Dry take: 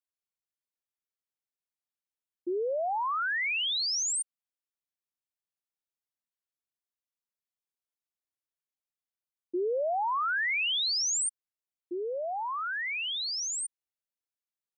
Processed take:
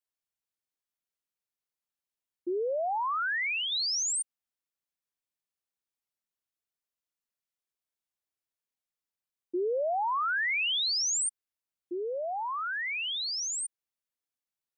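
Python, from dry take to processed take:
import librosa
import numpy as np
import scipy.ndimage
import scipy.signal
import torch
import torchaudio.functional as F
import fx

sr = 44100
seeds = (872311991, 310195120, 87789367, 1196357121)

y = fx.lowpass(x, sr, hz=3500.0, slope=12, at=(2.59, 3.72))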